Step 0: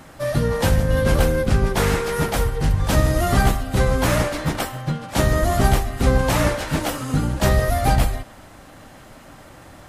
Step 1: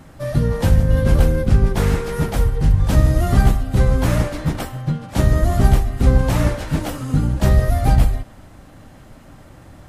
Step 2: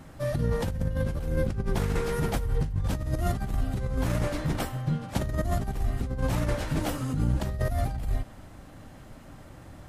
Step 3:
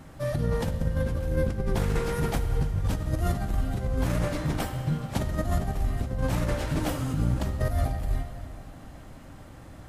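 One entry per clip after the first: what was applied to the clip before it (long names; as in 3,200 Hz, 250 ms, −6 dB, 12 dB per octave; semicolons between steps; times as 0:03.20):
low-shelf EQ 300 Hz +10.5 dB; level −5 dB
compressor whose output falls as the input rises −19 dBFS, ratio −1; level −8 dB
dense smooth reverb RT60 3 s, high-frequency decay 0.85×, DRR 8 dB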